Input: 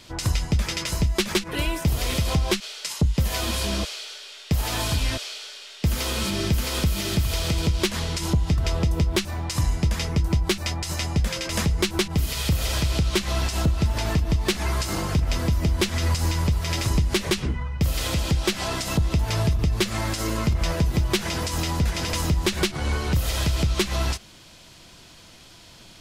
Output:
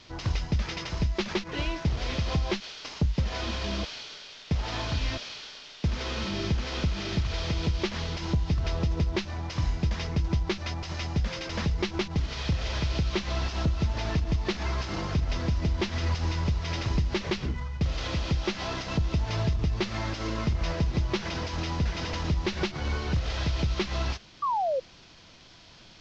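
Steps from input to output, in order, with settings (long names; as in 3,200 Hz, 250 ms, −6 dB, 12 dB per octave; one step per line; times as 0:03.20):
variable-slope delta modulation 32 kbit/s
sound drawn into the spectrogram fall, 0:24.42–0:24.80, 500–1,200 Hz −22 dBFS
level −4.5 dB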